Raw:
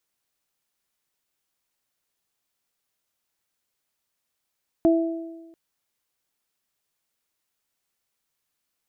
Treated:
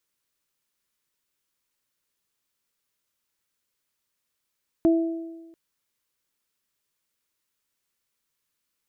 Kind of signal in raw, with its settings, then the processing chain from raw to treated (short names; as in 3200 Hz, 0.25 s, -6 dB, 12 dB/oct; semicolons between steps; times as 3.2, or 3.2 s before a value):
additive tone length 0.69 s, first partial 330 Hz, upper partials -5 dB, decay 1.22 s, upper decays 1.02 s, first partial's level -14 dB
bell 730 Hz -13 dB 0.23 oct